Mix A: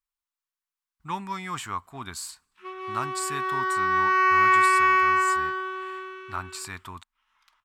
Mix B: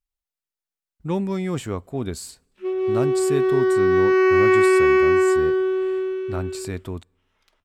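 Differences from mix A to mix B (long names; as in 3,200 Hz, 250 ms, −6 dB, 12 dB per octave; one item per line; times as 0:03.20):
background: send on
master: add low shelf with overshoot 730 Hz +12.5 dB, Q 3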